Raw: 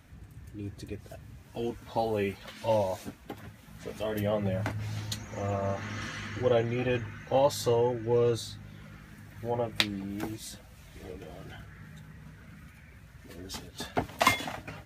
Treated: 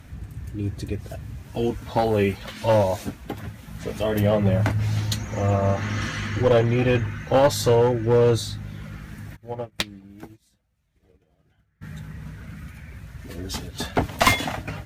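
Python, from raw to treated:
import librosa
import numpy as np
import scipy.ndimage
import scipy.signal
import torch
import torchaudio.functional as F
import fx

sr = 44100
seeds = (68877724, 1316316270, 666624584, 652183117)

y = fx.low_shelf(x, sr, hz=160.0, db=6.5)
y = fx.clip_asym(y, sr, top_db=-23.5, bottom_db=-8.5)
y = fx.upward_expand(y, sr, threshold_db=-43.0, expansion=2.5, at=(9.35, 11.81), fade=0.02)
y = y * 10.0 ** (8.0 / 20.0)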